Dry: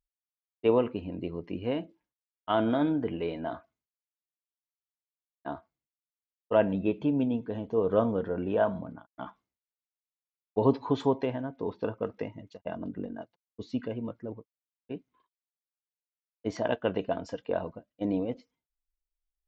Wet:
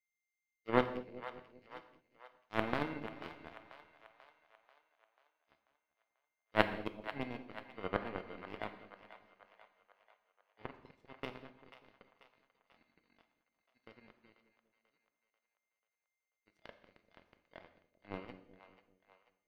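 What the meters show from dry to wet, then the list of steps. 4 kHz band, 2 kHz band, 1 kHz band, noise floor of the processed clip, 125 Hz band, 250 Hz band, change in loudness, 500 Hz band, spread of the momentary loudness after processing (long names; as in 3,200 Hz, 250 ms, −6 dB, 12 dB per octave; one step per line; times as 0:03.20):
−4.5 dB, −0.5 dB, −7.0 dB, below −85 dBFS, −13.5 dB, −15.0 dB, −9.5 dB, −14.0 dB, 25 LU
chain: running median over 5 samples
volume swells 122 ms
steady tone 2,100 Hz −39 dBFS
power curve on the samples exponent 3
echo with a time of its own for lows and highs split 590 Hz, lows 196 ms, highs 489 ms, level −13 dB
reverb whose tail is shaped and stops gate 250 ms falling, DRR 8.5 dB
level +6.5 dB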